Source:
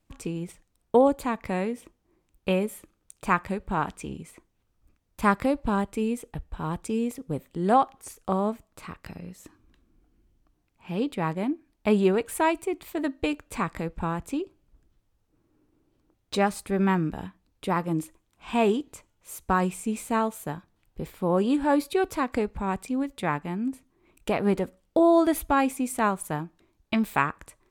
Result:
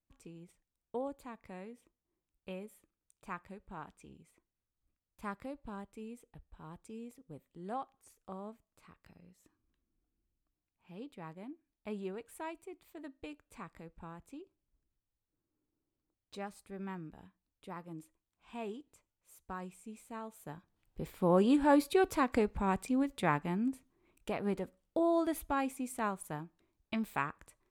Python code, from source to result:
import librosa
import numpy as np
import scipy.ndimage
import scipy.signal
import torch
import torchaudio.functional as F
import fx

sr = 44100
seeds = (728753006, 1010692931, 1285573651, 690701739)

y = fx.gain(x, sr, db=fx.line((20.21, -19.5), (20.5, -13.0), (21.24, -3.5), (23.56, -3.5), (24.29, -11.0)))